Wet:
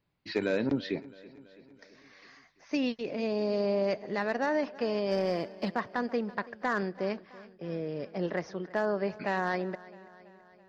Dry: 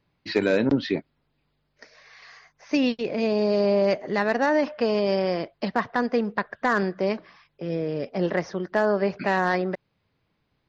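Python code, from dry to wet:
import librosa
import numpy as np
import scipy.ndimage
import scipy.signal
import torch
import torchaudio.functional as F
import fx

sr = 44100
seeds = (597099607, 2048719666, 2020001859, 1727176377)

y = fx.leveller(x, sr, passes=1, at=(5.11, 5.73))
y = fx.echo_feedback(y, sr, ms=331, feedback_pct=60, wet_db=-20)
y = F.gain(torch.from_numpy(y), -7.5).numpy()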